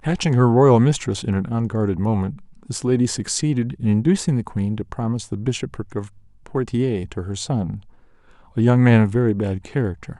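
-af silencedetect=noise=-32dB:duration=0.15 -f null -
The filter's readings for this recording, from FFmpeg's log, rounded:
silence_start: 2.37
silence_end: 2.63 | silence_duration: 0.26
silence_start: 6.07
silence_end: 6.46 | silence_duration: 0.40
silence_start: 7.79
silence_end: 8.57 | silence_duration: 0.78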